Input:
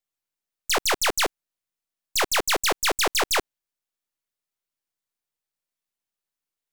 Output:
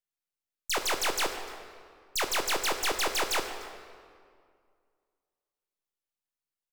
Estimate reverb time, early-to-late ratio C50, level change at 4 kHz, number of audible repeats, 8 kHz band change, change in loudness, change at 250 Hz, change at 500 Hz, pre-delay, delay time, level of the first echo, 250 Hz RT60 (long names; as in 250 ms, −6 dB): 2.1 s, 7.5 dB, −6.0 dB, 1, −6.5 dB, −6.5 dB, −5.5 dB, −6.0 dB, 14 ms, 299 ms, −21.5 dB, 2.3 s